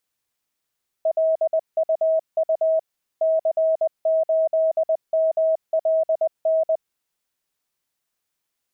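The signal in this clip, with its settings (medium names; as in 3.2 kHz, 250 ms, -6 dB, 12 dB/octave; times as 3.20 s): Morse "LUU C8MLN" 20 wpm 642 Hz -16 dBFS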